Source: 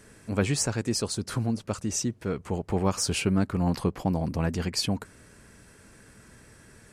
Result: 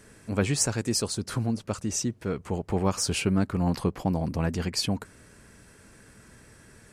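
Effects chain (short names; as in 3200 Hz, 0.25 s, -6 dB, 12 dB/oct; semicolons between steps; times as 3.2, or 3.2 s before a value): 0.6–1.09 high shelf 5500 Hz -> 8000 Hz +6.5 dB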